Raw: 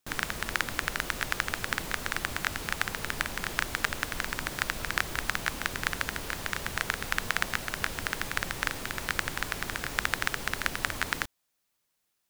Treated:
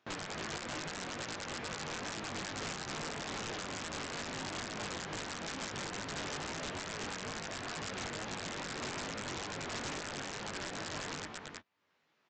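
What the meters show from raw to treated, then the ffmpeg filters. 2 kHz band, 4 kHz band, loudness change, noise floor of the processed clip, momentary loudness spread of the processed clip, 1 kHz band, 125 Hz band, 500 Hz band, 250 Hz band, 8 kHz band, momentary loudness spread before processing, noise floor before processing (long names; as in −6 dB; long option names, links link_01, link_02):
−12.0 dB, −6.0 dB, −8.5 dB, −76 dBFS, 1 LU, −6.5 dB, −5.5 dB, −1.5 dB, −1.5 dB, −5.5 dB, 3 LU, −78 dBFS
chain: -af "alimiter=limit=-14.5dB:level=0:latency=1:release=136,highpass=130,acompressor=mode=upward:threshold=-59dB:ratio=2.5,lowpass=2500,flanger=delay=8.7:depth=5.5:regen=-25:speed=0.86:shape=triangular,aecho=1:1:328:0.447,flanger=delay=18.5:depth=3.4:speed=2.3,aresample=16000,aeval=exprs='(mod(112*val(0)+1,2)-1)/112':channel_layout=same,aresample=44100,volume=8.5dB"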